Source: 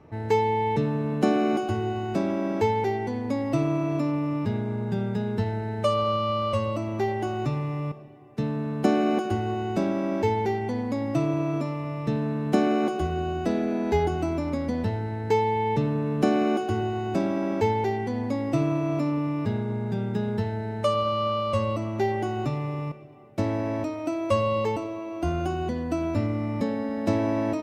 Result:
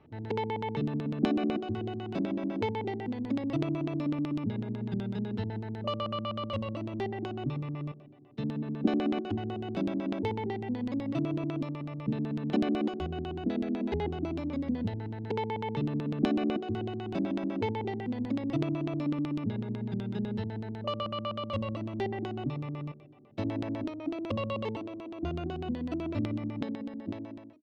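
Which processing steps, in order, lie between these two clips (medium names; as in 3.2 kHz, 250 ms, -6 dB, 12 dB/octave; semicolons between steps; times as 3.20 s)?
fade out at the end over 1.33 s; LFO low-pass square 8 Hz 270–3500 Hz; trim -8 dB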